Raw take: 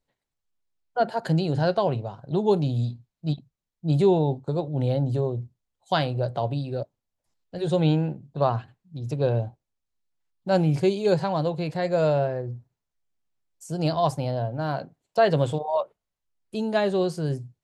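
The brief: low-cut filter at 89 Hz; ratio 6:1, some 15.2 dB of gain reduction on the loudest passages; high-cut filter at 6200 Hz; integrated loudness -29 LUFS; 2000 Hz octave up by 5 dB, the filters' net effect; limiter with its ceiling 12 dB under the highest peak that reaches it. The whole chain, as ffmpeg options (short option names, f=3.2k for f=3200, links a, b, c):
-af "highpass=89,lowpass=6.2k,equalizer=f=2k:t=o:g=7,acompressor=threshold=-32dB:ratio=6,volume=10dB,alimiter=limit=-18.5dB:level=0:latency=1"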